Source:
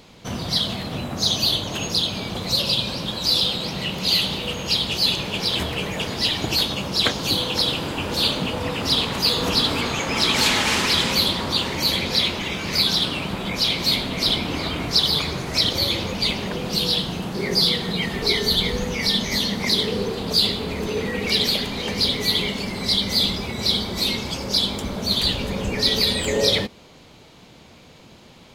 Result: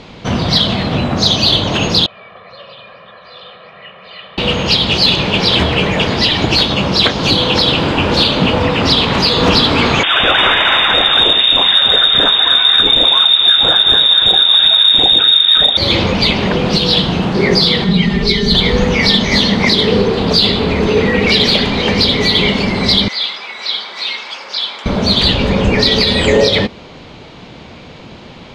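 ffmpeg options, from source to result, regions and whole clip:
-filter_complex "[0:a]asettb=1/sr,asplit=3[s0][s1][s2];[s0]atrim=end=2.064[s3];[s1]atrim=start=2.06:end=4.38,asetpts=PTS-STARTPTS,afade=t=in:d=0.004:c=qsin,afade=t=out:st=2.316:d=0.004:c=qsin,lowpass=f=1800:w=0.5412,lowpass=f=1800:w=1.3066,aderivative,aecho=1:1:1.7:0.8,atrim=end_sample=102312[s4];[s2]atrim=start=4.376[s5];[s3][s4]acrossfade=d=0.004:c1=hsin:c2=qsin[s6];[s6][s5]acrossfade=d=0.004:c1=qsin:c2=hsin,asettb=1/sr,asplit=3[s7][s8][s9];[s7]atrim=end=10.034[s10];[s8]atrim=start=10.03:end=15.77,asetpts=PTS-STARTPTS,afade=t=in:d=0.004:c=qsin,afade=t=out:st=5.736:d=0.004:c=qsin,asubboost=boost=9:cutoff=250,lowpass=f=3200:t=q:w=0.5098,lowpass=f=3200:t=q:w=0.6013,lowpass=f=3200:t=q:w=0.9,lowpass=f=3200:t=q:w=2.563,afreqshift=-3800[s11];[s9]atrim=start=15.766[s12];[s10][s11]acrossfade=d=0.004:c1=hsin:c2=qsin[s13];[s13][s12]acrossfade=d=0.004:c1=qsin:c2=hsin,asettb=1/sr,asplit=3[s14][s15][s16];[s14]atrim=end=17.844[s17];[s15]atrim=start=17.84:end=18.55,asetpts=PTS-STARTPTS,afade=t=in:d=0.004:c=qsin,afade=t=out:st=0.706:d=0.004:c=qsin,aemphasis=mode=reproduction:type=cd,aecho=1:1:5:0.7,atrim=end_sample=31311,acrossover=split=250|3000[s18][s19][s20];[s19]acompressor=threshold=0.0141:ratio=3:attack=3.2:release=140:knee=2.83:detection=peak[s21];[s18][s21][s20]amix=inputs=3:normalize=0[s22];[s16]atrim=start=18.546[s23];[s17][s22]acrossfade=d=0.004:c1=hsin:c2=qsin[s24];[s24][s23]acrossfade=d=0.004:c1=qsin:c2=hsin,asettb=1/sr,asplit=3[s25][s26][s27];[s25]atrim=end=23.084[s28];[s26]atrim=start=23.08:end=24.86,asetpts=PTS-STARTPTS,afade=t=in:d=0.004:c=qsin,afade=t=out:st=1.776:d=0.004:c=qsin,acrossover=split=5200[s29][s30];[s30]acompressor=threshold=0.02:ratio=4:attack=1:release=60[s31];[s29][s31]amix=inputs=2:normalize=0,highpass=1400,highshelf=f=2400:g=-9.5[s32];[s27]atrim=start=24.856[s33];[s28][s32]acrossfade=d=0.004:c1=hsin:c2=qsin[s34];[s34][s33]acrossfade=d=0.004:c1=qsin:c2=hsin,lowpass=3900,alimiter=limit=0.211:level=0:latency=1:release=200,acontrast=75,volume=2.11"

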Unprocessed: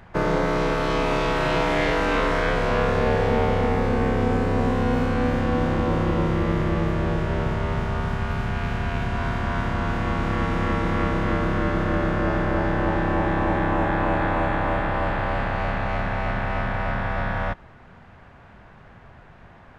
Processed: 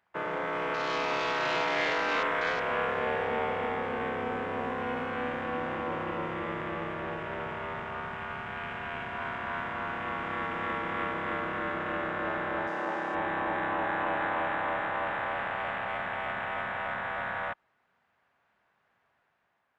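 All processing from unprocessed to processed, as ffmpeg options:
-filter_complex "[0:a]asettb=1/sr,asplit=3[s0][s1][s2];[s0]atrim=end=12.674[s3];[s1]atrim=start=12.67:end=13.15,asetpts=PTS-STARTPTS,afade=t=in:d=0.004:c=qsin,afade=t=out:st=0.476:d=0.004:c=qsin,highpass=190,highshelf=f=4100:t=q:w=1.5:g=11.5[s4];[s2]atrim=start=13.146[s5];[s3][s4]acrossfade=d=0.004:c1=hsin:c2=qsin[s6];[s6][s5]acrossfade=d=0.004:c1=qsin:c2=hsin,highpass=f=1000:p=1,afwtdn=0.0141,dynaudnorm=f=150:g=7:m=1.41,volume=0.562"

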